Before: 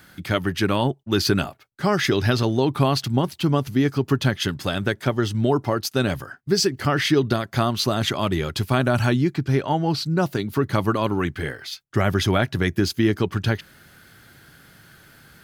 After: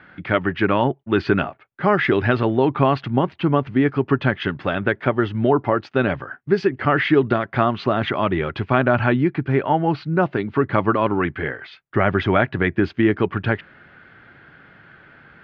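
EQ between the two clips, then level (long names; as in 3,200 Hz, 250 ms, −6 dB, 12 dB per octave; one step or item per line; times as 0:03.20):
low-pass filter 2,500 Hz 24 dB per octave
low-shelf EQ 180 Hz −9 dB
+5.0 dB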